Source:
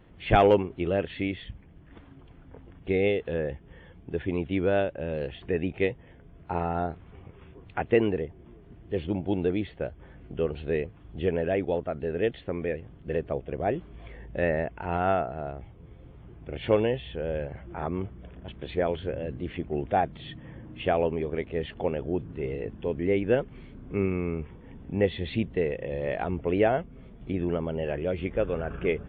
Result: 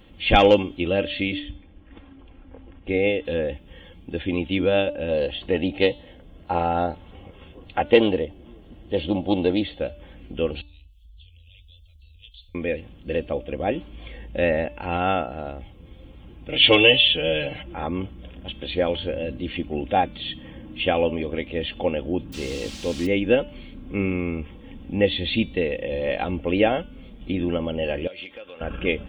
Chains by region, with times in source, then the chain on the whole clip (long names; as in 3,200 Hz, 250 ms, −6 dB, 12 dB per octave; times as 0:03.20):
0:01.39–0:03.25: low-pass filter 2,200 Hz + parametric band 150 Hz −10 dB 0.52 octaves
0:05.08–0:09.80: parametric band 620 Hz +5.5 dB 1 octave + notch filter 2,400 Hz, Q 13 + highs frequency-modulated by the lows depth 0.12 ms
0:10.61–0:12.55: inverse Chebyshev band-stop filter 160–1,800 Hz, stop band 50 dB + downward compressor 4 to 1, threshold −51 dBFS
0:16.49–0:17.63: parametric band 3,000 Hz +12 dB 0.97 octaves + comb filter 6.7 ms, depth 98%
0:22.32–0:23.05: background noise white −43 dBFS + high-frequency loss of the air 120 metres
0:28.07–0:28.61: high-pass filter 1,400 Hz 6 dB per octave + downward compressor 4 to 1, threshold −42 dBFS
whole clip: high shelf with overshoot 2,300 Hz +8 dB, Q 1.5; comb filter 3.7 ms, depth 53%; hum removal 292.8 Hz, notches 28; level +3.5 dB